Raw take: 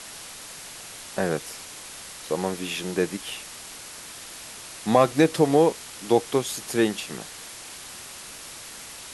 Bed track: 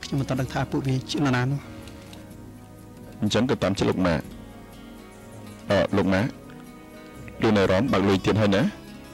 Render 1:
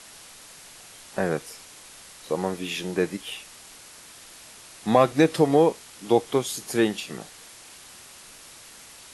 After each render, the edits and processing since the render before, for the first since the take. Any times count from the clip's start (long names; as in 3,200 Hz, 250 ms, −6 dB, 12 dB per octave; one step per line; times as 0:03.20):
noise reduction from a noise print 6 dB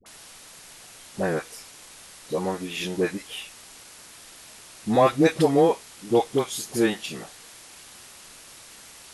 all-pass dispersion highs, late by 61 ms, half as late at 660 Hz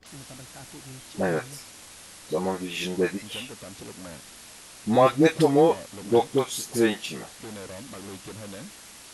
mix in bed track −20 dB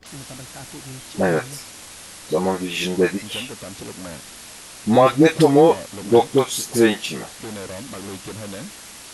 level +6.5 dB
brickwall limiter −3 dBFS, peak gain reduction 3 dB